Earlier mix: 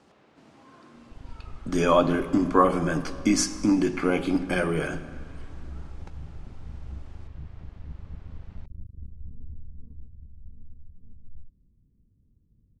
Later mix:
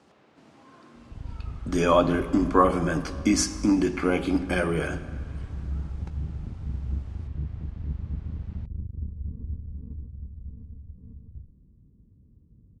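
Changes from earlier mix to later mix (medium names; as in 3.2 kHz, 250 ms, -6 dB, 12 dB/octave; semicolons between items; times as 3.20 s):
second sound +9.5 dB; master: add high-pass 43 Hz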